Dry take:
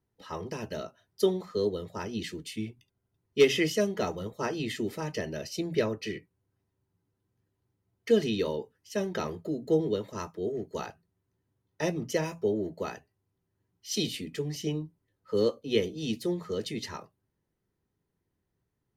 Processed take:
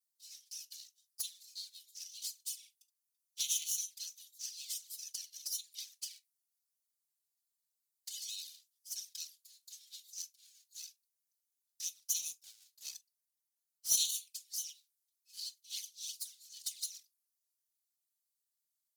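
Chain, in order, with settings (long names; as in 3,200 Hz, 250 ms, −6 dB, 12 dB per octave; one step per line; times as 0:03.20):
lower of the sound and its delayed copy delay 4.3 ms
inverse Chebyshev high-pass filter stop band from 760 Hz, stop band 80 dB
high-shelf EQ 5,800 Hz +9.5 dB
0:11.94–0:14.11: leveller curve on the samples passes 1
flanger swept by the level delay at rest 4.1 ms, full sweep at −36.5 dBFS
convolution reverb, pre-delay 19 ms, DRR 17 dB
level +3.5 dB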